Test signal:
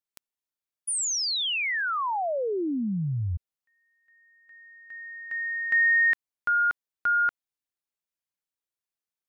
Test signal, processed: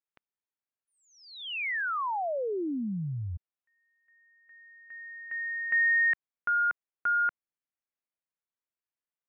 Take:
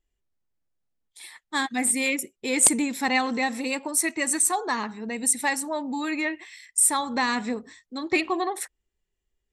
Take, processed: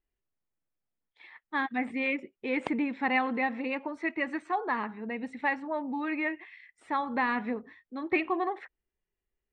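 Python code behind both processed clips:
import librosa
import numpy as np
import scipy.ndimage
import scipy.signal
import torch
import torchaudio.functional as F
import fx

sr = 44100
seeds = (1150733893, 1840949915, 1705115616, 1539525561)

y = scipy.signal.sosfilt(scipy.signal.butter(4, 2600.0, 'lowpass', fs=sr, output='sos'), x)
y = fx.low_shelf(y, sr, hz=110.0, db=-6.0)
y = y * librosa.db_to_amplitude(-3.0)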